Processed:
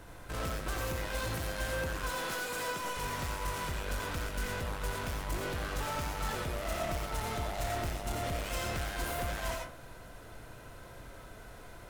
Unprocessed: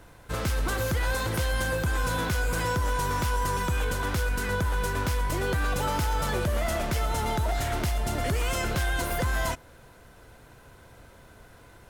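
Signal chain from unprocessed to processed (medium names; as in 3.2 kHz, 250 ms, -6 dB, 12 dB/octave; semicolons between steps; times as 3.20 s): 2.03–2.97 s: high-pass 290 Hz 12 dB/octave; saturation -35.5 dBFS, distortion -7 dB; on a send: reverberation RT60 0.40 s, pre-delay 45 ms, DRR 1.5 dB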